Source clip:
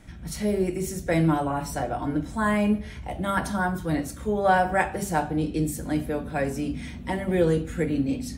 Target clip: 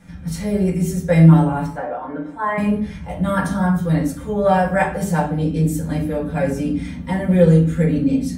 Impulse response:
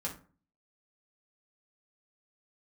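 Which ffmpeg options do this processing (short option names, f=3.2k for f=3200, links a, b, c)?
-filter_complex "[0:a]asettb=1/sr,asplit=3[a][b][c];[a]atrim=end=1.664[d];[b]atrim=start=1.66:end=2.58,asetpts=PTS-STARTPTS,afade=t=in:d=0.004:c=qsin,afade=t=out:st=0.916:d=0.004:c=qsin,acrossover=split=330 2500:gain=0.1 1 0.112[e][f][g];[e][f][g]amix=inputs=3:normalize=0[h];[c]atrim=start=2.576[i];[d][h]acrossfade=d=0.004:c1=hsin:c2=qsin[j];[j][i]acrossfade=d=0.004:c1=qsin:c2=hsin[k];[1:a]atrim=start_sample=2205[l];[k][l]afir=irnorm=-1:irlink=0,volume=2.5dB"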